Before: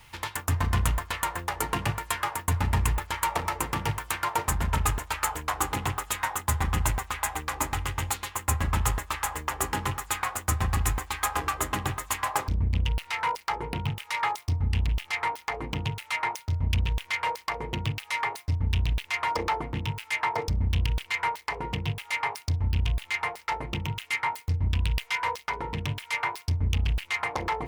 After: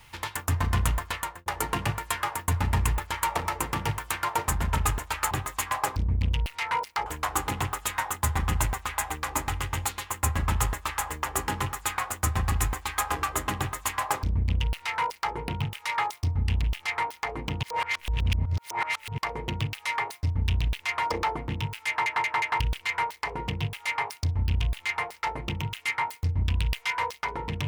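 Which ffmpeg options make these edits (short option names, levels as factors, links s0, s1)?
-filter_complex "[0:a]asplit=10[s0][s1][s2][s3][s4][s5][s6][s7][s8][s9];[s0]atrim=end=1.46,asetpts=PTS-STARTPTS,afade=t=out:st=1.12:d=0.34[s10];[s1]atrim=start=1.46:end=5.312,asetpts=PTS-STARTPTS,afade=t=in:d=0.004:c=hsin[s11];[s2]atrim=start=11.828:end=13.582[s12];[s3]atrim=start=5.308:end=15.882[s13];[s4]atrim=start=15.878:end=17.432,asetpts=PTS-STARTPTS,areverse[s14];[s5]atrim=start=17.428:end=20.312[s15];[s6]atrim=start=20.128:end=20.312[s16];[s7]atrim=start=20.128:end=20.312[s17];[s8]atrim=start=20.128:end=20.312[s18];[s9]atrim=start=20.848[s19];[s10][s11]concat=n=2:v=0:a=1[s20];[s20][s12]acrossfade=d=0.004:c1=hsin:c2=hsin[s21];[s21][s13]acrossfade=d=0.004:c1=hsin:c2=hsin[s22];[s22][s14]acrossfade=d=0.004:c1=hsin:c2=hsin[s23];[s23][s15]acrossfade=d=0.004:c1=hsin:c2=hsin[s24];[s24][s16]acrossfade=d=0.004:c1=hsin:c2=hsin[s25];[s25][s17]acrossfade=d=0.004:c1=hsin:c2=hsin[s26];[s26][s18]acrossfade=d=0.004:c1=hsin:c2=hsin[s27];[s27][s19]acrossfade=d=0.004:c1=hsin:c2=hsin"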